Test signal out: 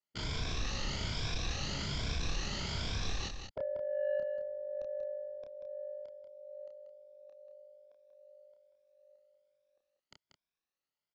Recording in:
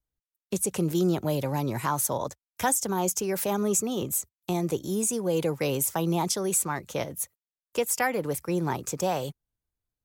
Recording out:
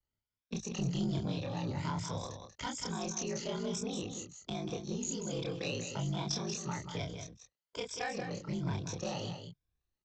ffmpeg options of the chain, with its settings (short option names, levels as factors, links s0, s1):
-filter_complex "[0:a]afftfilt=real='re*pow(10,13/40*sin(2*PI*(1.7*log(max(b,1)*sr/1024/100)/log(2)-(1.2)*(pts-256)/sr)))':imag='im*pow(10,13/40*sin(2*PI*(1.7*log(max(b,1)*sr/1024/100)/log(2)-(1.2)*(pts-256)/sr)))':win_size=1024:overlap=0.75,lowpass=f=5500:w=0.5412,lowpass=f=5500:w=1.3066,acrossover=split=160|3000[s0][s1][s2];[s1]acompressor=threshold=0.00126:ratio=1.5[s3];[s0][s3][s2]amix=inputs=3:normalize=0,aresample=16000,asoftclip=type=tanh:threshold=0.0447,aresample=44100,aeval=exprs='val(0)*sin(2*PI*25*n/s)':c=same,asplit=2[s4][s5];[s5]adelay=29,volume=0.668[s6];[s4][s6]amix=inputs=2:normalize=0,asplit=2[s7][s8];[s8]aecho=0:1:187:0.422[s9];[s7][s9]amix=inputs=2:normalize=0"